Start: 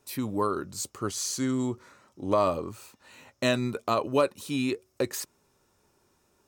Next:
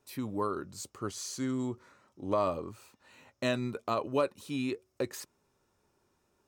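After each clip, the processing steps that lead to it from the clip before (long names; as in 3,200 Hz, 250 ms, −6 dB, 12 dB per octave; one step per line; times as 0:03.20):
high-shelf EQ 4,900 Hz −5.5 dB
level −5 dB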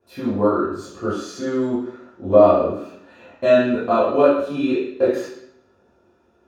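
convolution reverb RT60 0.70 s, pre-delay 6 ms, DRR −12.5 dB
level −10 dB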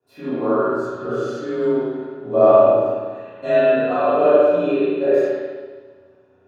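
frequency shifter +26 Hz
spring reverb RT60 1.5 s, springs 34/46 ms, chirp 65 ms, DRR −9 dB
level −9 dB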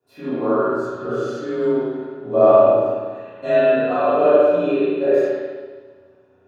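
de-essing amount 70%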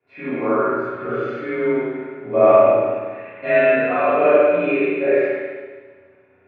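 low-pass with resonance 2,200 Hz, resonance Q 14
level −1 dB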